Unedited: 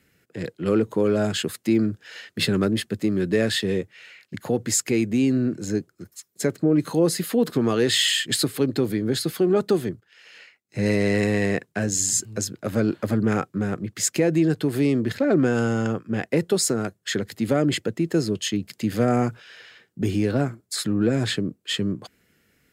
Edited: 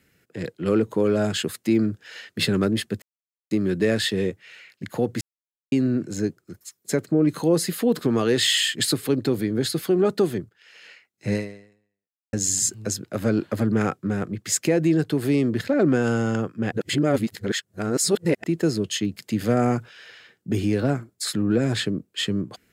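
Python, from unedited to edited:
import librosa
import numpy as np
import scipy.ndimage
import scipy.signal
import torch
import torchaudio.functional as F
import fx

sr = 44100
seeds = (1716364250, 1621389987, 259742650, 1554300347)

y = fx.edit(x, sr, fx.insert_silence(at_s=3.02, length_s=0.49),
    fx.silence(start_s=4.72, length_s=0.51),
    fx.fade_out_span(start_s=10.84, length_s=1.0, curve='exp'),
    fx.reverse_span(start_s=16.23, length_s=1.72), tone=tone)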